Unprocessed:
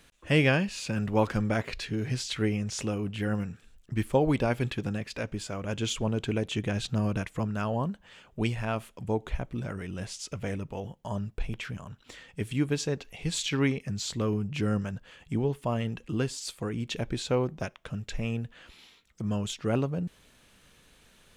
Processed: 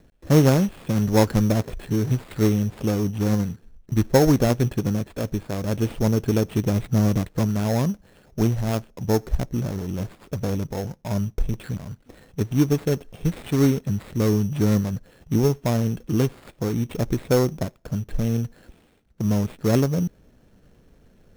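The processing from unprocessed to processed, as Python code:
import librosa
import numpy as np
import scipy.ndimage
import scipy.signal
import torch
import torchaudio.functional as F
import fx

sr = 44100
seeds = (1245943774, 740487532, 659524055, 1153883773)

y = scipy.ndimage.median_filter(x, 41, mode='constant')
y = fx.sample_hold(y, sr, seeds[0], rate_hz=5900.0, jitter_pct=0)
y = y * 10.0 ** (9.0 / 20.0)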